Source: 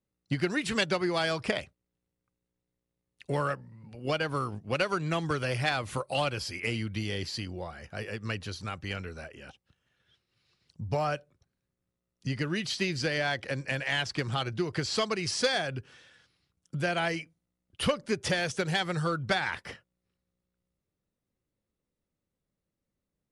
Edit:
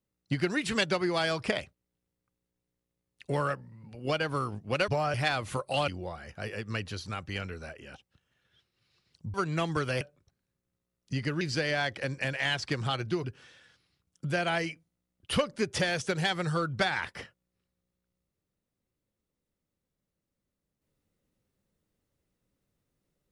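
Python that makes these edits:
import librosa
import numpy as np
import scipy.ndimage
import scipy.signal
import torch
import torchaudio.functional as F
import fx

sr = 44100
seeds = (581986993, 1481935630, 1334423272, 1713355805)

y = fx.edit(x, sr, fx.swap(start_s=4.88, length_s=0.67, other_s=10.89, other_length_s=0.26),
    fx.cut(start_s=6.29, length_s=1.14),
    fx.cut(start_s=12.55, length_s=0.33),
    fx.cut(start_s=14.71, length_s=1.03), tone=tone)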